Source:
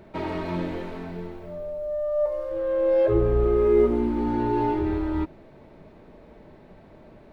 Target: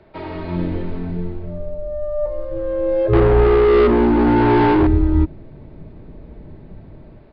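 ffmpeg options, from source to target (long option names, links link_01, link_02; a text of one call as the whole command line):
ffmpeg -i in.wav -filter_complex "[0:a]equalizer=frequency=210:width_type=o:width=0.69:gain=-6.5,acrossover=split=270|330|1800[link_01][link_02][link_03][link_04];[link_01]dynaudnorm=framelen=220:gausssize=5:maxgain=16.5dB[link_05];[link_05][link_02][link_03][link_04]amix=inputs=4:normalize=0,asettb=1/sr,asplit=3[link_06][link_07][link_08];[link_06]atrim=end=3.134[link_09];[link_07]atrim=start=3.13:end=4.87,asetpts=PTS-STARTPTS,afade=type=in:duration=0.004:curve=qsin,afade=type=out:start_time=1.736:duration=0.004:curve=qsin,asplit=2[link_10][link_11];[link_11]highpass=frequency=720:poles=1,volume=24dB,asoftclip=type=tanh:threshold=-7dB[link_12];[link_10][link_12]amix=inputs=2:normalize=0,lowpass=frequency=3900:poles=1,volume=-6dB[link_13];[link_08]atrim=start=4.866[link_14];[link_09][link_13]acrossfade=duration=0.004:curve1=hsin:curve2=qsin[link_15];[link_15][link_14]acrossfade=duration=0.004:curve1=qsin:curve2=hsin,aresample=11025,aresample=44100" out.wav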